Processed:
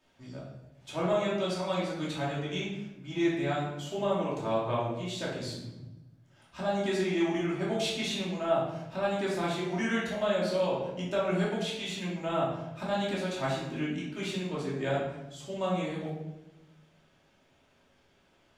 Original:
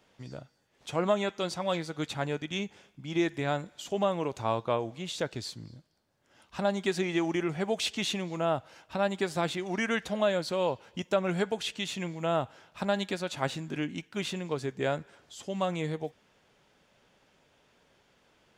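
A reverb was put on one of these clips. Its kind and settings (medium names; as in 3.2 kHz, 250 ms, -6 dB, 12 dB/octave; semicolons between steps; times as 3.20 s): simulated room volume 350 m³, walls mixed, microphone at 2.7 m; trim -8.5 dB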